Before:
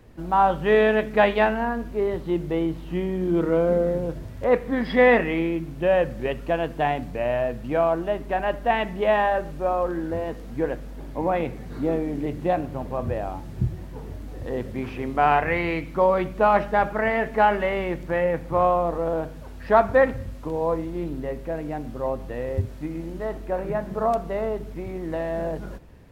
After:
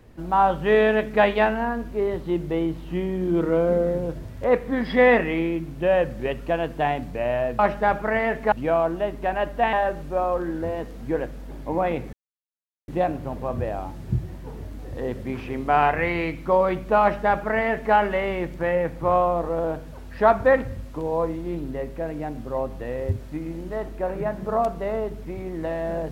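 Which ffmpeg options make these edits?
-filter_complex "[0:a]asplit=6[a][b][c][d][e][f];[a]atrim=end=7.592[g];[b]atrim=start=16.498:end=17.432[h];[c]atrim=start=7.588:end=8.802[i];[d]atrim=start=9.218:end=11.62,asetpts=PTS-STARTPTS,afade=t=out:st=2.398:d=0.004:c=hsin[j];[e]atrim=start=11.62:end=12.37,asetpts=PTS-STARTPTS,volume=0[k];[f]atrim=start=12.37,asetpts=PTS-STARTPTS,afade=t=in:d=0.004:c=hsin[l];[g][h]acrossfade=d=0.004:c1=hsin:c2=hsin[m];[m][i]acrossfade=d=0.004:c1=hsin:c2=hsin[n];[j][k][l]concat=n=3:v=0:a=1[o];[n][o]acrossfade=d=0.004:c1=hsin:c2=hsin"

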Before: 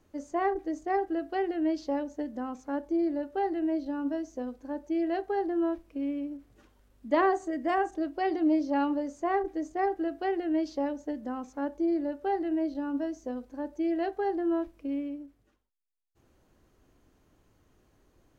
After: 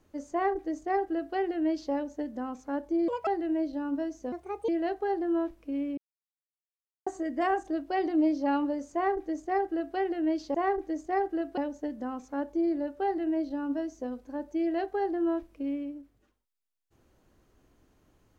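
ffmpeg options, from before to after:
-filter_complex "[0:a]asplit=9[a][b][c][d][e][f][g][h][i];[a]atrim=end=3.084[j];[b]atrim=start=3.08:end=3.4,asetpts=PTS-STARTPTS,asetrate=74088,aresample=44100[k];[c]atrim=start=3.396:end=4.454[l];[d]atrim=start=4.45:end=4.96,asetpts=PTS-STARTPTS,asetrate=61740,aresample=44100,atrim=end_sample=16065,asetpts=PTS-STARTPTS[m];[e]atrim=start=4.956:end=6.25,asetpts=PTS-STARTPTS,afade=t=out:st=1.29:d=0.004:c=hsin[n];[f]atrim=start=6.25:end=7.34,asetpts=PTS-STARTPTS,volume=0[o];[g]atrim=start=7.34:end=10.822,asetpts=PTS-STARTPTS,afade=t=in:d=0.004:c=hsin[p];[h]atrim=start=9.208:end=10.242[q];[i]atrim=start=10.818[r];[j][k]acrossfade=d=0.004:c1=hsin:c2=hsin[s];[s][l]acrossfade=d=0.004:c1=hsin:c2=hsin[t];[t][m]acrossfade=d=0.004:c1=hsin:c2=hsin[u];[n][o][p]concat=n=3:v=0:a=1[v];[u][v]acrossfade=d=0.004:c1=hsin:c2=hsin[w];[w][q]acrossfade=d=0.004:c1=hsin:c2=hsin[x];[x][r]acrossfade=d=0.004:c1=hsin:c2=hsin"

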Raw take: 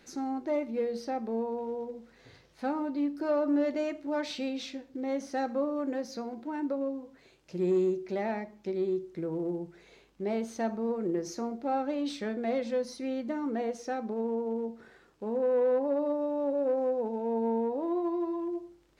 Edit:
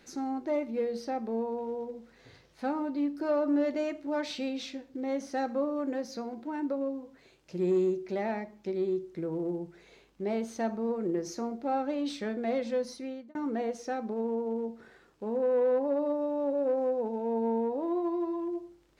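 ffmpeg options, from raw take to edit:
-filter_complex "[0:a]asplit=2[a][b];[a]atrim=end=13.35,asetpts=PTS-STARTPTS,afade=t=out:st=12.9:d=0.45[c];[b]atrim=start=13.35,asetpts=PTS-STARTPTS,afade=t=in:d=0.004:c=hsin[d];[c][d]concat=n=2:v=0:a=1"

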